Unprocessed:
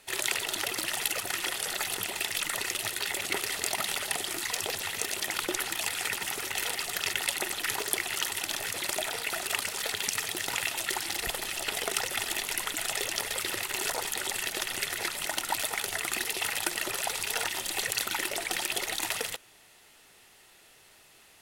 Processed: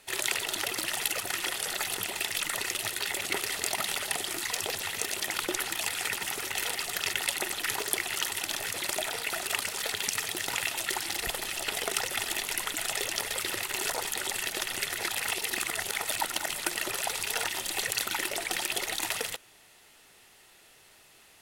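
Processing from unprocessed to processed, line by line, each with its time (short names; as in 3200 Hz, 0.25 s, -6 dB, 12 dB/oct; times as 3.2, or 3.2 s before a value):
15.09–16.66 reverse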